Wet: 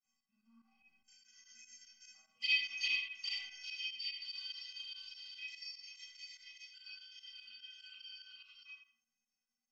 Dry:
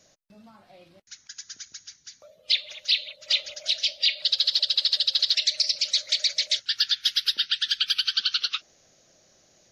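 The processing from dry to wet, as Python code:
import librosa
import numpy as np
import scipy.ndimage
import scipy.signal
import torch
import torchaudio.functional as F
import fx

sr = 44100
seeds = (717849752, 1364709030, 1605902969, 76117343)

p1 = fx.block_float(x, sr, bits=7)
p2 = fx.doppler_pass(p1, sr, speed_mps=12, closest_m=4.3, pass_at_s=2.57)
p3 = fx.graphic_eq_10(p2, sr, hz=(125, 500, 2000, 4000), db=(9, -5, 9, 5))
p4 = fx.vibrato(p3, sr, rate_hz=2.0, depth_cents=70.0)
p5 = scipy.signal.sosfilt(scipy.signal.butter(6, 10000.0, 'lowpass', fs=sr, output='sos'), p4)
p6 = fx.low_shelf(p5, sr, hz=130.0, db=-4.5)
p7 = fx.fixed_phaser(p6, sr, hz=2600.0, stages=8)
p8 = fx.stiff_resonator(p7, sr, f0_hz=230.0, decay_s=0.43, stiffness=0.03)
p9 = p8 + fx.echo_filtered(p8, sr, ms=83, feedback_pct=37, hz=2300.0, wet_db=-5.5, dry=0)
p10 = fx.rev_schroeder(p9, sr, rt60_s=0.41, comb_ms=26, drr_db=-8.0)
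y = fx.volume_shaper(p10, sr, bpm=146, per_beat=2, depth_db=-12, release_ms=64.0, shape='fast start')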